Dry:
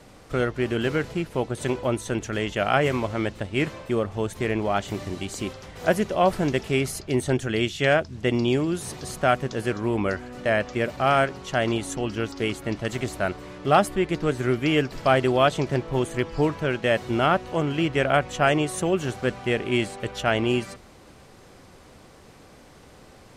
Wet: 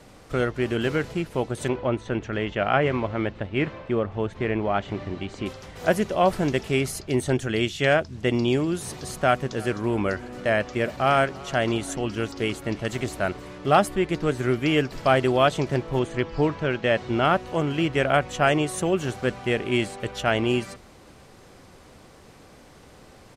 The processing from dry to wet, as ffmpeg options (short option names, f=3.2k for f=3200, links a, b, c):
-filter_complex "[0:a]asettb=1/sr,asplit=3[a][b][c];[a]atrim=end=1.684[d];[b]atrim=start=1.68:end=5.46,asetpts=PTS-STARTPTS,afade=t=in:d=0.004:c=qsin,afade=t=out:st=3.776:d=0.004:c=qsin,lowpass=3k[e];[c]atrim=start=5.456[f];[d][e]acrossfade=d=0.004:c1=hsin:c2=qsin[g];[g][f]acrossfade=d=0.004:c1=qsin:c2=hsin,asplit=3[h][i][j];[h]afade=t=out:st=9.56:d=0.02[k];[i]aecho=1:1:331|662|993:0.075|0.036|0.0173,afade=t=in:st=9.56:d=0.02,afade=t=out:st=13.49:d=0.02[l];[j]afade=t=in:st=13.49:d=0.02[m];[k][l][m]amix=inputs=3:normalize=0,asettb=1/sr,asplit=3[n][o][p];[n]atrim=end=15.994[q];[o]atrim=start=15.99:end=17.25,asetpts=PTS-STARTPTS,afade=t=in:d=0.004:c=qsin,afade=t=out:st=1.256:d=0.004:c=qsin,lowpass=5.6k[r];[p]atrim=start=17.246[s];[q][r]acrossfade=d=0.004:c1=hsin:c2=qsin[t];[t][s]acrossfade=d=0.004:c1=qsin:c2=hsin"